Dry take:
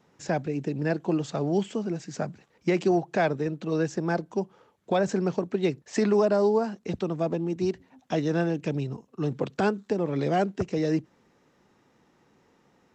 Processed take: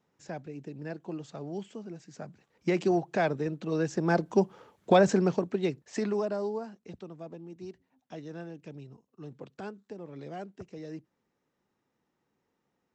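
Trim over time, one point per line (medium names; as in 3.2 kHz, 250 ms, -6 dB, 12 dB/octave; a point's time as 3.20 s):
2.20 s -12 dB
2.70 s -3 dB
3.81 s -3 dB
4.35 s +4.5 dB
4.93 s +4.5 dB
5.66 s -4 dB
7.18 s -16 dB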